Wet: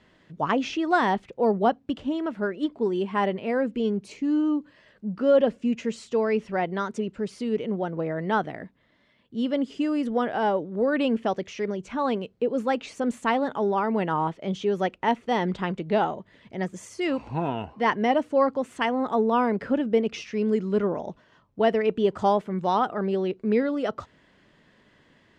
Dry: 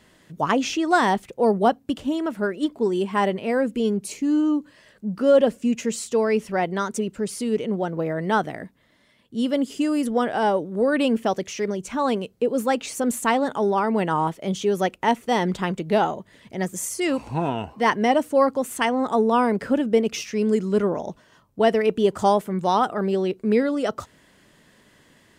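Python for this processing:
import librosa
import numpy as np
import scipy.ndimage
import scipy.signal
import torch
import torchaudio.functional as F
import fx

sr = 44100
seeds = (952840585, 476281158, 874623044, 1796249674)

y = scipy.signal.sosfilt(scipy.signal.butter(2, 3900.0, 'lowpass', fs=sr, output='sos'), x)
y = y * librosa.db_to_amplitude(-3.0)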